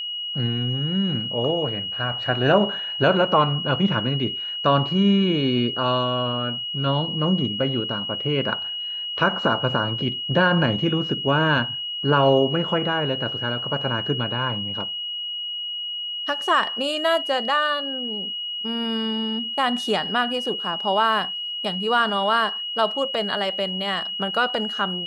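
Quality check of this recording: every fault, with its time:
whistle 2,900 Hz −27 dBFS

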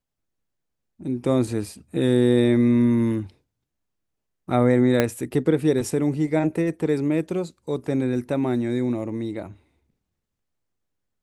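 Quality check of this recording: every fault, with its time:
0:05.00: click −5 dBFS

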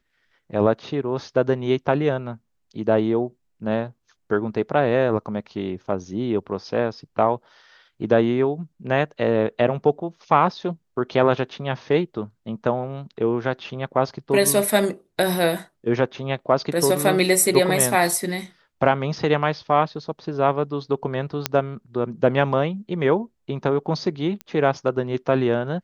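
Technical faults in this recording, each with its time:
0:21.46: click −3 dBFS
0:24.41: click −18 dBFS

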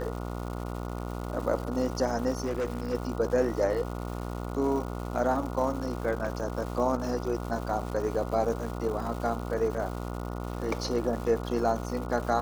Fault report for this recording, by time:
mains buzz 60 Hz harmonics 24 −35 dBFS
surface crackle 360 per second −37 dBFS
0:02.42–0:02.95: clipping −26 dBFS

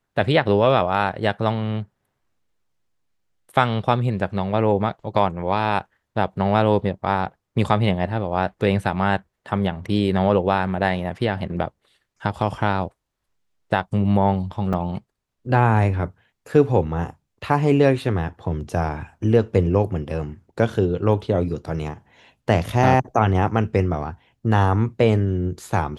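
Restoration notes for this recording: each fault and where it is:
0:14.73–0:14.74: drop-out 5.8 ms

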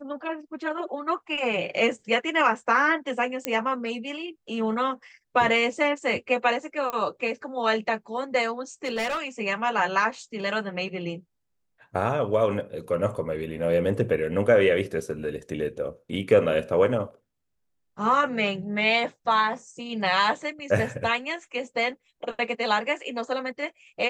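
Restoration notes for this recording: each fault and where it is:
0:03.45: click −9 dBFS
0:06.90: click −15 dBFS
0:08.84–0:09.20: clipping −24 dBFS

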